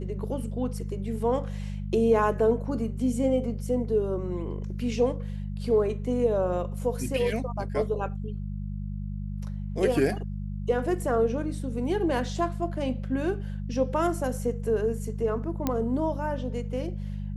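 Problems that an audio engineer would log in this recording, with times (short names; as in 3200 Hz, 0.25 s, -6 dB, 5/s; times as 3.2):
hum 50 Hz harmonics 4 -33 dBFS
15.67 pop -12 dBFS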